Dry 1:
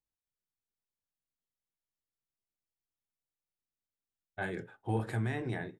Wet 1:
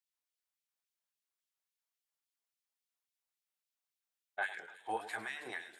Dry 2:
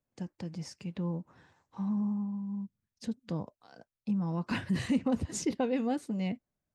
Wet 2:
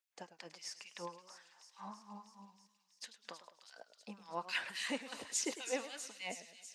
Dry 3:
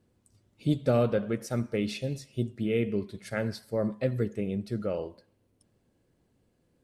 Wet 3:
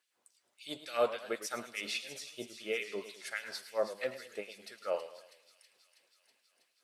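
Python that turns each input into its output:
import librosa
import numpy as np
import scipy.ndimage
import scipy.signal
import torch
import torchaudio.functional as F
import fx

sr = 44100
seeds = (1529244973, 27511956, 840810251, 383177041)

y = fx.filter_lfo_highpass(x, sr, shape='sine', hz=3.6, low_hz=640.0, high_hz=3000.0, q=1.2)
y = fx.echo_wet_highpass(y, sr, ms=323, feedback_pct=73, hz=4100.0, wet_db=-9.0)
y = fx.echo_warbled(y, sr, ms=106, feedback_pct=43, rate_hz=2.8, cents=127, wet_db=-13.5)
y = y * librosa.db_to_amplitude(1.0)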